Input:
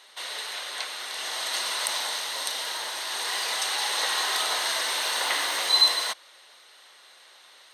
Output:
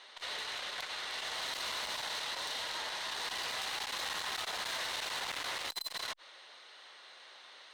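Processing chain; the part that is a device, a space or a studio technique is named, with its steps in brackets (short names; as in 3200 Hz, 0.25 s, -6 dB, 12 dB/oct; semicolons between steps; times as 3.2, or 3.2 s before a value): valve radio (BPF 91–4900 Hz; tube stage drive 32 dB, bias 0.25; core saturation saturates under 1400 Hz)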